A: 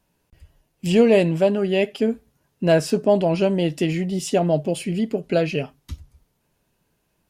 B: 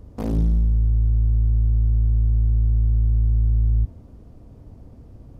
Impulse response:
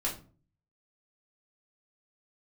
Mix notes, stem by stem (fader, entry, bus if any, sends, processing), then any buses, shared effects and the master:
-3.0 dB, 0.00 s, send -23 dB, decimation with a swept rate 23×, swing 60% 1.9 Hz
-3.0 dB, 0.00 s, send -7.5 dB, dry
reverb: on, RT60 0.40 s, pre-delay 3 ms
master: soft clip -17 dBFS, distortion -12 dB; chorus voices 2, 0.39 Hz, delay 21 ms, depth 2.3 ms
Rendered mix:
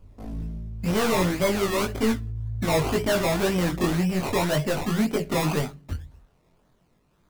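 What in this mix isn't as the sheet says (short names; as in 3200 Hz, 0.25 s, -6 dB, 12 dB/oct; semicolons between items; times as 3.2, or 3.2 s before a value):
stem A -3.0 dB -> +6.0 dB; stem B -3.0 dB -> -10.5 dB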